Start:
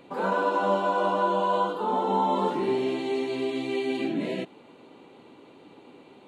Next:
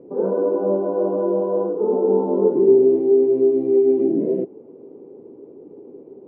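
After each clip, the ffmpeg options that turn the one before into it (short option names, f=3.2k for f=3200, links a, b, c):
-af "lowpass=f=420:t=q:w=4.1,volume=2.5dB"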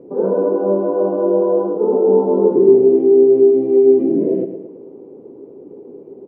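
-af "aecho=1:1:111|222|333|444|555:0.335|0.161|0.0772|0.037|0.0178,volume=3.5dB"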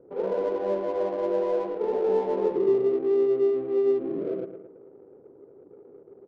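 -af "equalizer=f=240:t=o:w=1.5:g=-13.5,adynamicsmooth=sensitivity=4:basefreq=830,volume=-5dB"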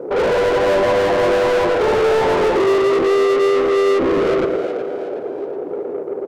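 -filter_complex "[0:a]asplit=2[a][b];[b]highpass=f=720:p=1,volume=34dB,asoftclip=type=tanh:threshold=-13.5dB[c];[a][c]amix=inputs=2:normalize=0,lowpass=f=2.5k:p=1,volume=-6dB,asplit=2[d][e];[e]asplit=4[f][g][h][i];[f]adelay=370,afreqshift=95,volume=-11dB[j];[g]adelay=740,afreqshift=190,volume=-18.5dB[k];[h]adelay=1110,afreqshift=285,volume=-26.1dB[l];[i]adelay=1480,afreqshift=380,volume=-33.6dB[m];[j][k][l][m]amix=inputs=4:normalize=0[n];[d][n]amix=inputs=2:normalize=0,volume=3.5dB"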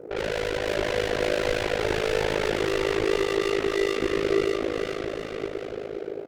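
-af "equalizer=f=250:t=o:w=1:g=-8,equalizer=f=500:t=o:w=1:g=-5,equalizer=f=1k:t=o:w=1:g=-12,aecho=1:1:600|1020|1314|1520|1664:0.631|0.398|0.251|0.158|0.1,tremolo=f=53:d=0.919"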